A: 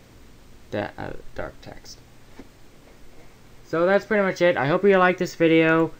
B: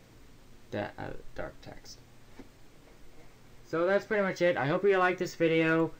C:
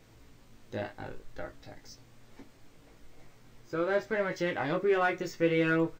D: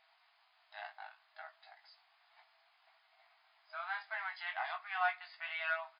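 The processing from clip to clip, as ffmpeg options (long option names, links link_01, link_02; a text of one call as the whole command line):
ffmpeg -i in.wav -filter_complex "[0:a]flanger=delay=6.2:depth=2.3:regen=-58:speed=0.67:shape=sinusoidal,asplit=2[link_01][link_02];[link_02]asoftclip=type=tanh:threshold=-26.5dB,volume=-7dB[link_03];[link_01][link_03]amix=inputs=2:normalize=0,volume=-5.5dB" out.wav
ffmpeg -i in.wav -filter_complex "[0:a]asplit=2[link_01][link_02];[link_02]adelay=18,volume=-5dB[link_03];[link_01][link_03]amix=inputs=2:normalize=0,volume=-3dB" out.wav
ffmpeg -i in.wav -af "afftfilt=real='re*between(b*sr/4096,630,5100)':imag='im*between(b*sr/4096,630,5100)':win_size=4096:overlap=0.75,volume=-4dB" out.wav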